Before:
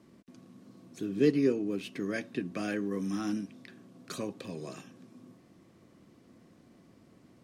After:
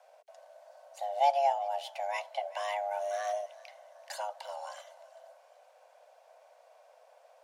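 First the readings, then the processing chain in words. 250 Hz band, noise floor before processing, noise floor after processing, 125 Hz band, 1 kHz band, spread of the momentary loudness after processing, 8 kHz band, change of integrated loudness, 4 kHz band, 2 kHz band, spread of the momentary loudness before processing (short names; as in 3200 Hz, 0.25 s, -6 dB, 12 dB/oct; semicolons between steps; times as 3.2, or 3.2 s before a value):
under -40 dB, -61 dBFS, -62 dBFS, under -40 dB, +18.0 dB, 21 LU, 0.0 dB, -0.5 dB, +2.5 dB, -1.0 dB, 21 LU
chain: thinning echo 0.384 s, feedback 48%, level -20.5 dB; frequency shift +410 Hz; gain -1 dB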